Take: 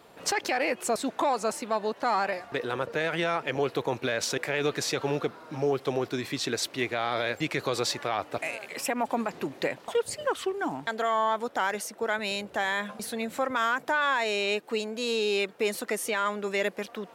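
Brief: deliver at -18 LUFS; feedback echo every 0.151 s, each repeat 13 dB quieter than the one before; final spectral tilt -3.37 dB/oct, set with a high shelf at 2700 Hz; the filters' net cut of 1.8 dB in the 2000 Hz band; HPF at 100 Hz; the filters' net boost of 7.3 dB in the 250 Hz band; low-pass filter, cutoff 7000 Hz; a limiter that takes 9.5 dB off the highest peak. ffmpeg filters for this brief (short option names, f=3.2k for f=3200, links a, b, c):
-af "highpass=100,lowpass=7k,equalizer=f=250:t=o:g=9,equalizer=f=2k:t=o:g=-6.5,highshelf=f=2.7k:g=9,alimiter=limit=-21dB:level=0:latency=1,aecho=1:1:151|302|453:0.224|0.0493|0.0108,volume=12.5dB"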